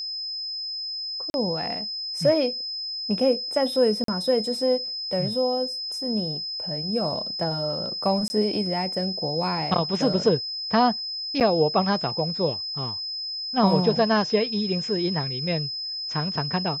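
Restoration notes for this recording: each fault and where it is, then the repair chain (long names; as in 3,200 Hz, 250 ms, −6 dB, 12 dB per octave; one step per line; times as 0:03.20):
whistle 5,100 Hz −29 dBFS
0:01.30–0:01.34: drop-out 41 ms
0:04.04–0:04.08: drop-out 43 ms
0:08.28–0:08.30: drop-out 20 ms
0:11.40–0:11.41: drop-out 7.8 ms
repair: notch filter 5,100 Hz, Q 30
repair the gap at 0:01.30, 41 ms
repair the gap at 0:04.04, 43 ms
repair the gap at 0:08.28, 20 ms
repair the gap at 0:11.40, 7.8 ms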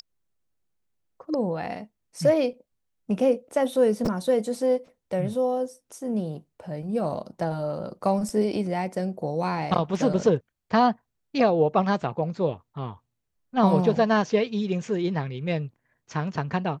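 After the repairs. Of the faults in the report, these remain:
none of them is left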